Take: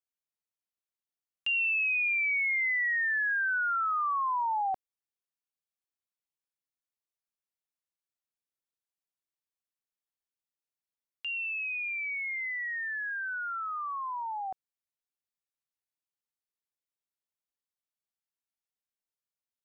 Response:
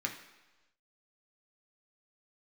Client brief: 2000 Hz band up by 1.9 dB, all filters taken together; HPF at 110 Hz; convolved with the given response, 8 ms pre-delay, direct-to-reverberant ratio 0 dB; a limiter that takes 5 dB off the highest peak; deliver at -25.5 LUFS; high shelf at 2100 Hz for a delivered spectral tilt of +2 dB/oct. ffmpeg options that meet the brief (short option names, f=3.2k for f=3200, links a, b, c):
-filter_complex "[0:a]highpass=110,equalizer=f=2k:t=o:g=7,highshelf=f=2.1k:g=-8,alimiter=level_in=3.5dB:limit=-24dB:level=0:latency=1,volume=-3.5dB,asplit=2[a][b];[1:a]atrim=start_sample=2205,adelay=8[c];[b][c]afir=irnorm=-1:irlink=0,volume=-3.5dB[d];[a][d]amix=inputs=2:normalize=0,volume=1dB"